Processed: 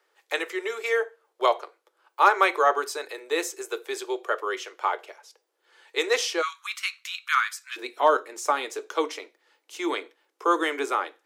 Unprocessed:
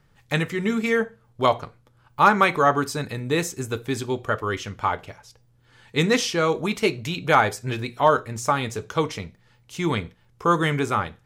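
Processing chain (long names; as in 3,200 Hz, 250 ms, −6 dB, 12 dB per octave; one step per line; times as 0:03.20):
Butterworth high-pass 340 Hz 72 dB per octave, from 0:06.41 1,100 Hz, from 0:07.76 300 Hz
level −2 dB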